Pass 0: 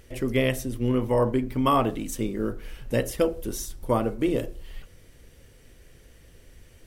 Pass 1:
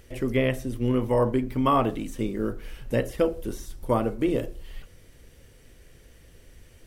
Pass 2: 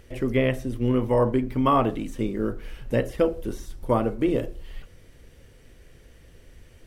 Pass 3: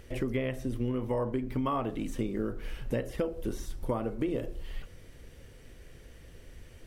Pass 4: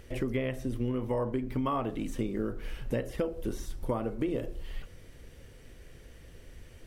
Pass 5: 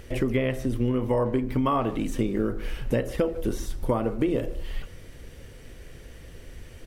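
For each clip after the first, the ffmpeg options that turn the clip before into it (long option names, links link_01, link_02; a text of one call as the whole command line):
ffmpeg -i in.wav -filter_complex "[0:a]acrossover=split=3000[link_01][link_02];[link_02]acompressor=threshold=-44dB:ratio=4:attack=1:release=60[link_03];[link_01][link_03]amix=inputs=2:normalize=0" out.wav
ffmpeg -i in.wav -af "highshelf=frequency=5200:gain=-6.5,volume=1.5dB" out.wav
ffmpeg -i in.wav -af "acompressor=threshold=-28dB:ratio=6" out.wav
ffmpeg -i in.wav -af anull out.wav
ffmpeg -i in.wav -filter_complex "[0:a]asplit=2[link_01][link_02];[link_02]adelay=150,highpass=300,lowpass=3400,asoftclip=type=hard:threshold=-27.5dB,volume=-17dB[link_03];[link_01][link_03]amix=inputs=2:normalize=0,volume=6.5dB" out.wav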